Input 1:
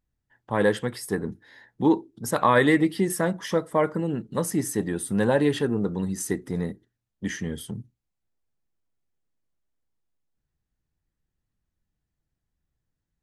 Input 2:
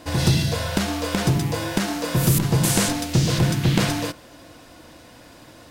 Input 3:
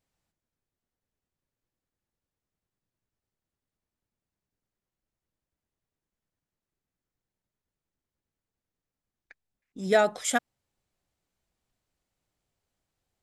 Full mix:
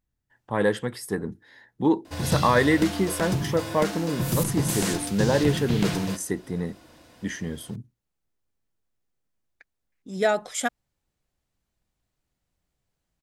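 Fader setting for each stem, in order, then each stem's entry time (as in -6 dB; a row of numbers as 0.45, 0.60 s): -1.0, -7.0, -0.5 dB; 0.00, 2.05, 0.30 s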